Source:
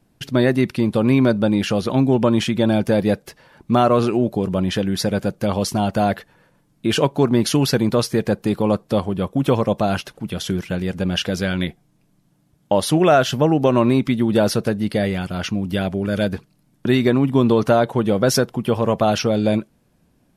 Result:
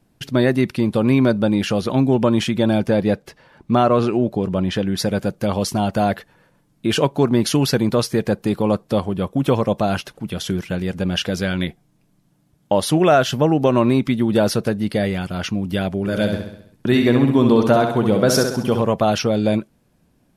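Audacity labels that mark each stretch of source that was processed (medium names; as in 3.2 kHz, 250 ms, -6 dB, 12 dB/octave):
2.860000	4.980000	treble shelf 7.7 kHz -10 dB
15.990000	18.820000	feedback delay 66 ms, feedback 53%, level -6 dB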